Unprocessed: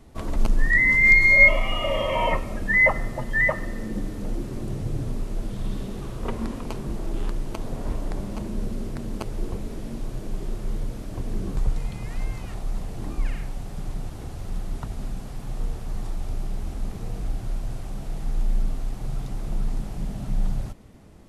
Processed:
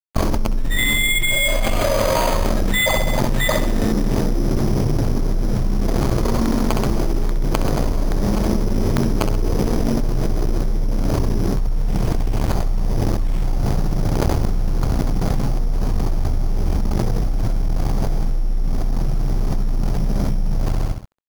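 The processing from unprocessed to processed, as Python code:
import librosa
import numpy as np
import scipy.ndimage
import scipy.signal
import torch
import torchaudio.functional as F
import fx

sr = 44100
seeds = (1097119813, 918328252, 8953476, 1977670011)

p1 = scipy.signal.medfilt(x, 25)
p2 = fx.high_shelf(p1, sr, hz=2400.0, db=12.0)
p3 = fx.rider(p2, sr, range_db=4, speed_s=0.5)
p4 = p2 + F.gain(torch.from_numpy(p3), -0.5).numpy()
p5 = p4 * (1.0 - 0.61 / 2.0 + 0.61 / 2.0 * np.cos(2.0 * np.pi * 1.1 * (np.arange(len(p4)) / sr)))
p6 = np.sign(p5) * np.maximum(np.abs(p5) - 10.0 ** (-32.0 / 20.0), 0.0)
p7 = p6 + fx.echo_feedback(p6, sr, ms=65, feedback_pct=49, wet_db=-10, dry=0)
p8 = np.repeat(scipy.signal.resample_poly(p7, 1, 8), 8)[:len(p7)]
p9 = fx.env_flatten(p8, sr, amount_pct=100)
y = F.gain(torch.from_numpy(p9), -6.5).numpy()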